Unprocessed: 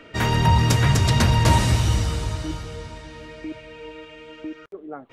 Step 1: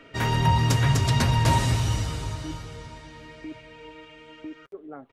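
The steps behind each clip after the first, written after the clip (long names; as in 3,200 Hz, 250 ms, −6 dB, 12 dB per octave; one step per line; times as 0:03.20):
comb filter 7.4 ms, depth 36%
level −4.5 dB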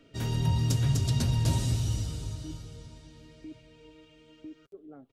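octave-band graphic EQ 500/1,000/2,000 Hz −3/−11/−11 dB
level −4 dB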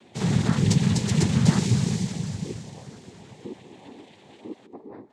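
on a send at −14.5 dB: convolution reverb RT60 2.0 s, pre-delay 113 ms
on the sum: cochlear-implant simulation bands 6
level +6.5 dB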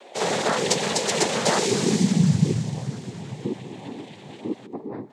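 high-pass filter sweep 550 Hz → 130 Hz, 0:01.56–0:02.41
level +7 dB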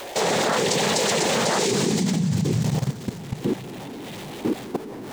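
converter with a step at zero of −32.5 dBFS
backwards echo 31 ms −20.5 dB
output level in coarse steps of 14 dB
level +6.5 dB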